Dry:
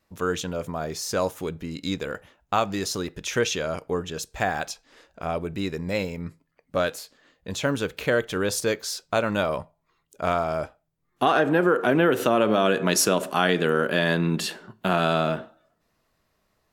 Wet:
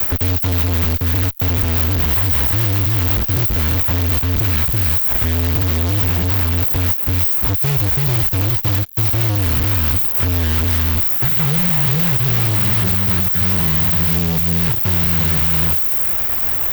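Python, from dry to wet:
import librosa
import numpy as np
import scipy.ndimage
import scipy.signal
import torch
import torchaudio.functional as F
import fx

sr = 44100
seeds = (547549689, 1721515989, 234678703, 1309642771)

p1 = x + 0.5 * 10.0 ** (-13.0 / 20.0) * np.diff(np.sign(x), prepend=np.sign(x[:1]))
p2 = scipy.signal.sosfilt(scipy.signal.cheby2(4, 80, [500.0, 6400.0], 'bandstop', fs=sr, output='sos'), p1)
p3 = fx.over_compress(p2, sr, threshold_db=-34.0, ratio=-0.5)
p4 = fx.highpass(p3, sr, hz=53.0, slope=6)
p5 = fx.tilt_eq(p4, sr, slope=-2.5)
p6 = p5 + fx.echo_single(p5, sr, ms=328, db=-5.5, dry=0)
p7 = fx.fuzz(p6, sr, gain_db=57.0, gate_db=-53.0)
p8 = fx.high_shelf(p7, sr, hz=5200.0, db=6.5)
p9 = fx.band_squash(p8, sr, depth_pct=70)
y = p9 * 10.0 ** (-3.5 / 20.0)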